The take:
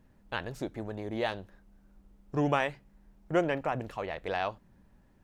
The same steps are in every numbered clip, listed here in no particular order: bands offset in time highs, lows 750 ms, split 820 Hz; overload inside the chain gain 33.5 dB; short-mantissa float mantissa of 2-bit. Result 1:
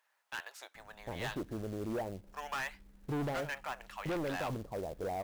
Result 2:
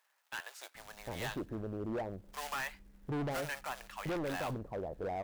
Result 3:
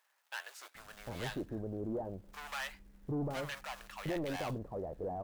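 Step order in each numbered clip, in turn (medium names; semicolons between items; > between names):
bands offset in time > overload inside the chain > short-mantissa float; short-mantissa float > bands offset in time > overload inside the chain; overload inside the chain > short-mantissa float > bands offset in time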